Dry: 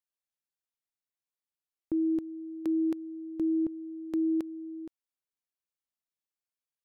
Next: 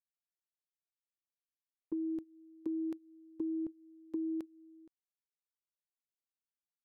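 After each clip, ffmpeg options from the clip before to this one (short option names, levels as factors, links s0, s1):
-af "agate=range=0.112:threshold=0.0282:ratio=16:detection=peak,acompressor=threshold=0.0141:ratio=6,volume=1.19"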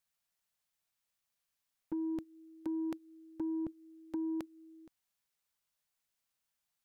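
-af "equalizer=f=350:w=1.8:g=-10,asoftclip=type=tanh:threshold=0.01,volume=3.35"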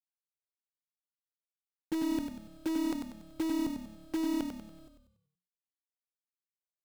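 -filter_complex "[0:a]acrusher=bits=8:dc=4:mix=0:aa=0.000001,asplit=2[s0][s1];[s1]asplit=5[s2][s3][s4][s5][s6];[s2]adelay=95,afreqshift=-36,volume=0.531[s7];[s3]adelay=190,afreqshift=-72,volume=0.224[s8];[s4]adelay=285,afreqshift=-108,volume=0.0933[s9];[s5]adelay=380,afreqshift=-144,volume=0.0394[s10];[s6]adelay=475,afreqshift=-180,volume=0.0166[s11];[s7][s8][s9][s10][s11]amix=inputs=5:normalize=0[s12];[s0][s12]amix=inputs=2:normalize=0,volume=1.68"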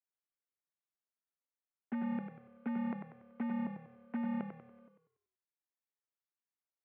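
-af "highpass=f=320:t=q:w=0.5412,highpass=f=320:t=q:w=1.307,lowpass=f=2300:t=q:w=0.5176,lowpass=f=2300:t=q:w=0.7071,lowpass=f=2300:t=q:w=1.932,afreqshift=-87,volume=0.841"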